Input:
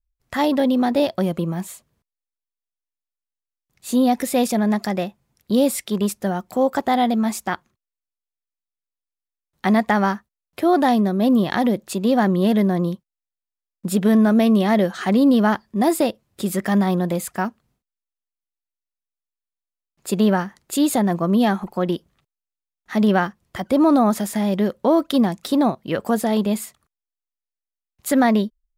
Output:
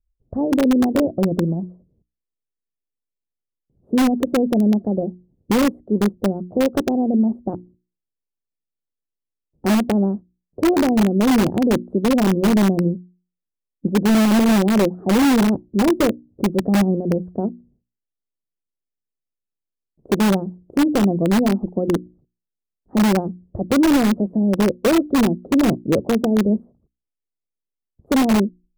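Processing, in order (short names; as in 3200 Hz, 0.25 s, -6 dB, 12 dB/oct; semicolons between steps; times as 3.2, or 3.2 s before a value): inverse Chebyshev low-pass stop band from 2200 Hz, stop band 70 dB; notches 60/120/180/240/300/360 Hz; harmonic-percussive split percussive +7 dB; in parallel at -5.5 dB: wrapped overs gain 13 dB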